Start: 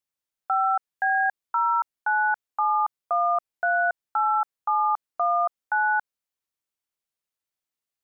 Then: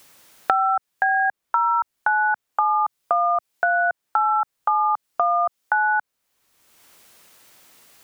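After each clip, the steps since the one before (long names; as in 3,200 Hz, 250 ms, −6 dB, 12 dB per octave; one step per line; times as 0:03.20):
brickwall limiter −22 dBFS, peak gain reduction 6 dB
multiband upward and downward compressor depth 100%
level +8.5 dB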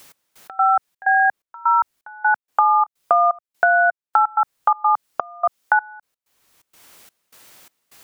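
gate pattern "x..x.xxx.xxx..xx" 127 BPM −24 dB
level +4.5 dB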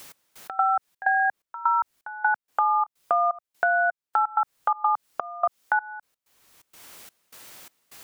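brickwall limiter −11 dBFS, peak gain reduction 8 dB
downward compressor, threshold −21 dBFS, peak gain reduction 6.5 dB
level +2 dB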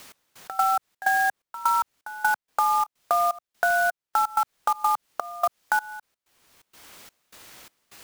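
converter with an unsteady clock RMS 0.023 ms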